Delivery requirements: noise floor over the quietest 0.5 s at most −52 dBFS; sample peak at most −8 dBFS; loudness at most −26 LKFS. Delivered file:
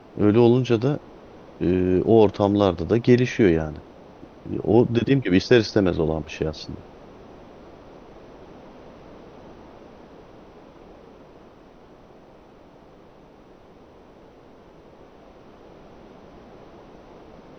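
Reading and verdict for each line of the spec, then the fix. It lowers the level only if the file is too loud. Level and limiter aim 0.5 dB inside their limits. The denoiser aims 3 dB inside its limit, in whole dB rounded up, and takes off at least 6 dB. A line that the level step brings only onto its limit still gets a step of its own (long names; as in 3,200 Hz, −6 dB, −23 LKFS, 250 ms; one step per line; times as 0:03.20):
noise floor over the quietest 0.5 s −49 dBFS: out of spec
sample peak −3.5 dBFS: out of spec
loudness −20.5 LKFS: out of spec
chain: level −6 dB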